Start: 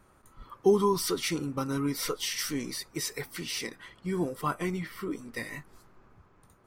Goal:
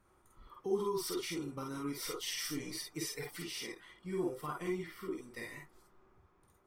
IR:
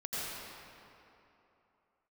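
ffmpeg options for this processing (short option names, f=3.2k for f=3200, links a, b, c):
-filter_complex "[0:a]asettb=1/sr,asplit=3[a][b][c];[a]atrim=end=2.194[d];[b]atrim=start=2.19:end=3.44,asetpts=PTS-STARTPTS,afade=t=in:d=0.004:c=qsin,afade=t=out:st=1.246:d=0.004:c=qsin,aecho=1:1:6.7:0.9,atrim=end_sample=55125[e];[c]atrim=start=3.436[f];[d][e]acrossfade=d=0.004:c1=hsin:c2=qsin[g];[g][f]acrossfade=d=0.004:c1=qsin:c2=hsin,alimiter=limit=-20.5dB:level=0:latency=1:release=128[h];[1:a]atrim=start_sample=2205,atrim=end_sample=4410,asetrate=79380,aresample=44100[i];[h][i]afir=irnorm=-1:irlink=0"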